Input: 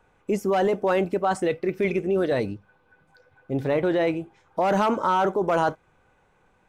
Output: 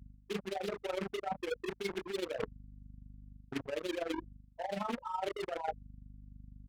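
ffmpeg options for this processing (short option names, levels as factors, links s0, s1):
-filter_complex "[0:a]afftfilt=real='re*gte(hypot(re,im),0.355)':imag='im*gte(hypot(re,im),0.355)':win_size=1024:overlap=0.75,aecho=1:1:25|35:0.531|0.224,acrossover=split=490[s0][s1];[s0]acrusher=bits=4:mix=0:aa=0.5[s2];[s2][s1]amix=inputs=2:normalize=0,adynamicequalizer=threshold=0.00251:dfrequency=6300:dqfactor=1.6:tfrequency=6300:tqfactor=1.6:attack=5:release=100:ratio=0.375:range=2:mode=cutabove:tftype=bell,crystalizer=i=9.5:c=0,adynamicsmooth=sensitivity=4:basefreq=1900,aeval=exprs='val(0)+0.00398*(sin(2*PI*50*n/s)+sin(2*PI*2*50*n/s)/2+sin(2*PI*3*50*n/s)/3+sin(2*PI*4*50*n/s)/4+sin(2*PI*5*50*n/s)/5)':c=same,areverse,acompressor=threshold=0.0251:ratio=16,areverse,tremolo=f=24:d=0.75,volume=1.12"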